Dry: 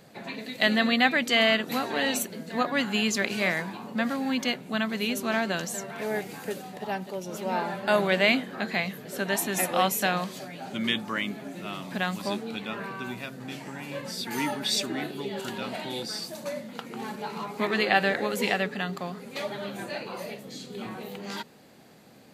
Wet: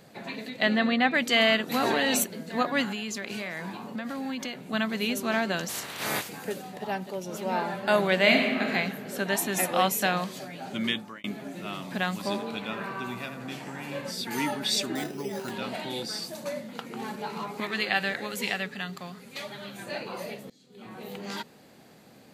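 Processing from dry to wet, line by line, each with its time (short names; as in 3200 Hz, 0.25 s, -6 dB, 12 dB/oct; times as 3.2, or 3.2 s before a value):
0.48–1.13 LPF 3100 Hz -> 1800 Hz 6 dB/oct
1.74–2.24 fast leveller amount 100%
2.92–4.73 compressor, threshold -30 dBFS
5.68–6.28 spectral limiter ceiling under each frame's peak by 28 dB
8.17–8.71 reverb throw, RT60 1.7 s, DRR 1 dB
10.84–11.24 fade out linear
12.23–14.11 narrowing echo 83 ms, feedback 71%, level -5 dB
14.95–15.51 careless resampling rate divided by 8×, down filtered, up hold
17.6–19.87 bell 460 Hz -8.5 dB 2.9 oct
20.5–21.11 fade in quadratic, from -22 dB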